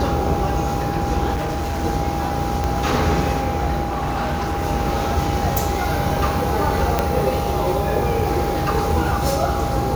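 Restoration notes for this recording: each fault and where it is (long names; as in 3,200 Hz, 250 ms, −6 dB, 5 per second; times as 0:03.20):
mains buzz 60 Hz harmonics 23 −26 dBFS
whistle 810 Hz −25 dBFS
0:01.34–0:01.85: clipping −20 dBFS
0:02.64: click
0:03.83–0:04.64: clipping −18.5 dBFS
0:06.99: click −3 dBFS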